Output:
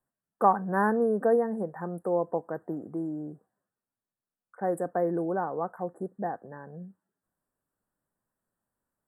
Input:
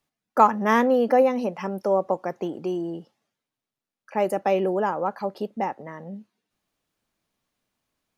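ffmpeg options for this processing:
-af "asetrate=39690,aresample=44100,asuperstop=centerf=3800:order=20:qfactor=0.68,volume=-5.5dB"

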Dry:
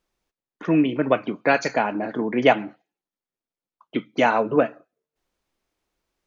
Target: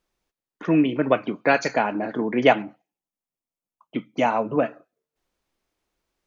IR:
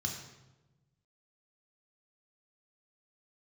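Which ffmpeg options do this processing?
-filter_complex "[0:a]asettb=1/sr,asplit=3[a][b][c];[a]atrim=end=2.624[d];[b]atrim=start=2.62:end=4.63,asetpts=PTS-STARTPTS,afade=t=in:d=0.004:c=qsin,afade=t=out:st=2.006:d=0.004:c=qsin,equalizer=f=400:t=o:w=0.67:g=-6,equalizer=f=1.6k:t=o:w=0.67:g=-8,equalizer=f=4k:t=o:w=0.67:g=-9[e];[c]atrim=start=4.626[f];[d][e]acrossfade=d=0.004:c1=hsin:c2=qsin[g];[g][f]acrossfade=d=0.004:c1=qsin:c2=hsin"

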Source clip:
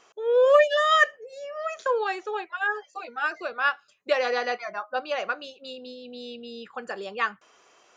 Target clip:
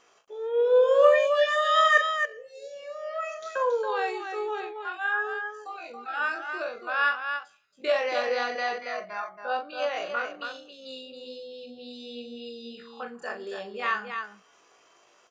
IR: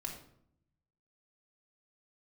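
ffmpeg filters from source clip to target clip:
-af "atempo=0.52,aecho=1:1:37.9|277:0.447|0.501,volume=-3dB"

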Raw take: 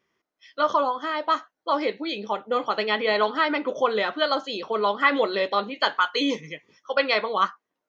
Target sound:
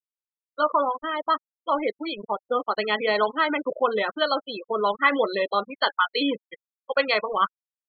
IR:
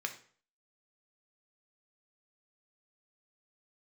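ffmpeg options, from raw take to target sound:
-af "aeval=exprs='val(0)*gte(abs(val(0)),0.0266)':c=same,afftfilt=real='re*gte(hypot(re,im),0.0562)':imag='im*gte(hypot(re,im),0.0562)':win_size=1024:overlap=0.75"

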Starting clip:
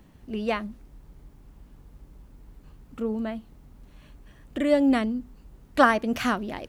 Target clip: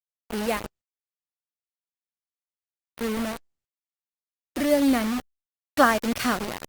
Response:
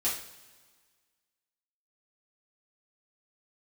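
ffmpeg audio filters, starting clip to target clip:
-af "superequalizer=14b=1.58:15b=0.501,acrusher=bits=4:mix=0:aa=0.000001" -ar 48000 -c:a libopus -b:a 32k

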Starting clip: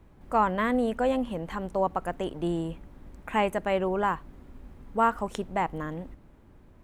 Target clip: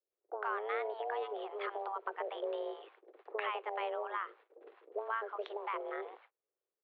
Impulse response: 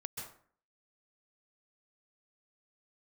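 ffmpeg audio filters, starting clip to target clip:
-filter_complex "[0:a]agate=range=-39dB:threshold=-43dB:ratio=16:detection=peak,acompressor=threshold=-38dB:ratio=4,tremolo=f=110:d=0.519,acrossover=split=560[a][b];[b]adelay=110[c];[a][c]amix=inputs=2:normalize=0,highpass=f=160:t=q:w=0.5412,highpass=f=160:t=q:w=1.307,lowpass=f=3.6k:t=q:w=0.5176,lowpass=f=3.6k:t=q:w=0.7071,lowpass=f=3.6k:t=q:w=1.932,afreqshift=210,volume=5dB"

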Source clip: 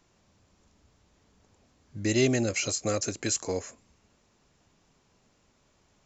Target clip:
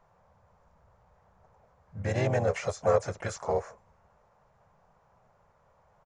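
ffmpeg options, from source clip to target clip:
-filter_complex "[0:a]firequalizer=gain_entry='entry(170,0);entry(300,-21);entry(510,5);entry(900,8);entry(2800,-13);entry(4200,-16)':delay=0.05:min_phase=1,asplit=4[a][b][c][d];[b]asetrate=37084,aresample=44100,atempo=1.18921,volume=-5dB[e];[c]asetrate=55563,aresample=44100,atempo=0.793701,volume=-14dB[f];[d]asetrate=58866,aresample=44100,atempo=0.749154,volume=-16dB[g];[a][e][f][g]amix=inputs=4:normalize=0"

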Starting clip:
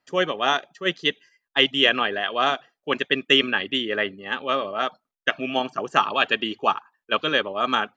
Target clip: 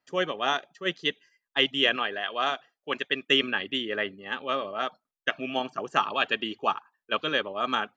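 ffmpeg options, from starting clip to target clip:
-filter_complex "[0:a]asettb=1/sr,asplit=3[a][b][c];[a]atrim=end=1.964[d];[b]atrim=start=1.96:end=3.29,asetpts=PTS-STARTPTS,afade=t=in:d=0.004:c=qsin,afade=t=out:st=1.326:d=0.004:c=qsin,lowshelf=f=360:g=-6[e];[c]atrim=start=3.286[f];[d][e]acrossfade=d=0.004:c1=hsin:c2=qsin[g];[g][f]acrossfade=d=0.004:c1=qsin:c2=hsin,volume=-5dB"

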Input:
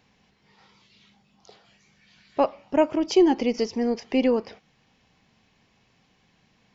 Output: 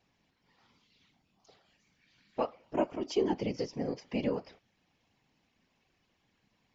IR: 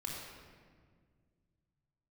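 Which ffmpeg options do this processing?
-af "flanger=delay=2.5:depth=5.2:regen=72:speed=0.34:shape=triangular,afftfilt=real='hypot(re,im)*cos(2*PI*random(0))':imag='hypot(re,im)*sin(2*PI*random(1))':win_size=512:overlap=0.75"

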